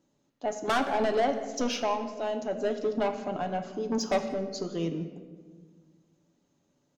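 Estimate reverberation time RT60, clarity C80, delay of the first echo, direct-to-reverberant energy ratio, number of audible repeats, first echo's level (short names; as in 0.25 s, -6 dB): 1.5 s, 10.5 dB, 0.179 s, 5.0 dB, 1, -20.0 dB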